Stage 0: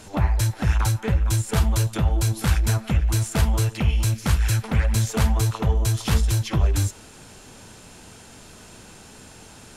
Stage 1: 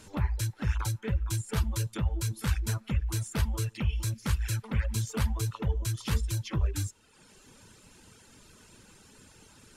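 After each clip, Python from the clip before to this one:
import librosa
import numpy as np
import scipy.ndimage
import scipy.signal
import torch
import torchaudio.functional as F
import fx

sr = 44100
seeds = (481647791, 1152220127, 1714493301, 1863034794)

y = fx.dereverb_blind(x, sr, rt60_s=1.0)
y = fx.peak_eq(y, sr, hz=710.0, db=-10.0, octaves=0.33)
y = F.gain(torch.from_numpy(y), -7.5).numpy()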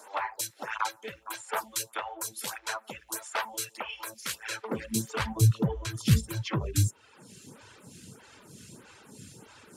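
y = fx.filter_sweep_highpass(x, sr, from_hz=720.0, to_hz=120.0, start_s=4.3, end_s=5.37, q=1.8)
y = fx.stagger_phaser(y, sr, hz=1.6)
y = F.gain(torch.from_numpy(y), 7.5).numpy()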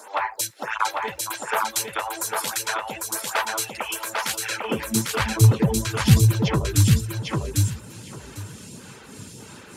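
y = fx.echo_feedback(x, sr, ms=799, feedback_pct=17, wet_db=-3)
y = F.gain(torch.from_numpy(y), 7.0).numpy()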